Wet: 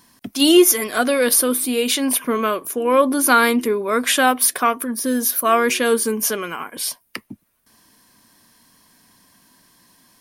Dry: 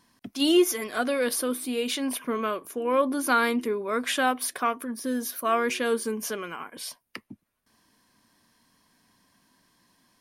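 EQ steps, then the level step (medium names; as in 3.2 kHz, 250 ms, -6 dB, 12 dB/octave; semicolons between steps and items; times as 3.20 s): treble shelf 8.6 kHz +10.5 dB; +8.0 dB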